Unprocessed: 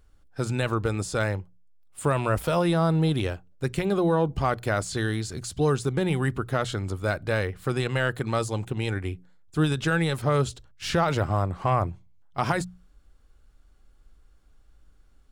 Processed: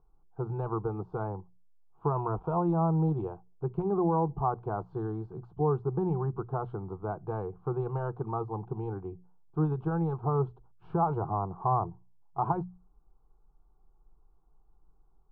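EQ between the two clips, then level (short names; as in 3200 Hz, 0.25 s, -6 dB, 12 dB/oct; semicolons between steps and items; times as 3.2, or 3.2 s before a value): ladder low-pass 1100 Hz, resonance 40%; fixed phaser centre 380 Hz, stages 8; +4.5 dB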